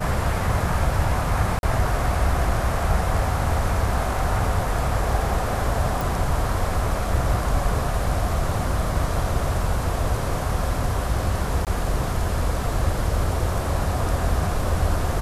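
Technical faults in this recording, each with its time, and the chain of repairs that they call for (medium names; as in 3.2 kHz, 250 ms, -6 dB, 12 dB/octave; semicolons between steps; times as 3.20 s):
1.59–1.63 s: dropout 41 ms
6.01 s: pop
11.65–11.67 s: dropout 18 ms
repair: de-click; interpolate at 1.59 s, 41 ms; interpolate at 11.65 s, 18 ms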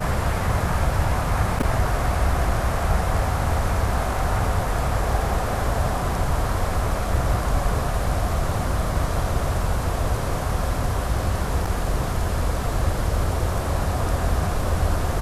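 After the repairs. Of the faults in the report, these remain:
nothing left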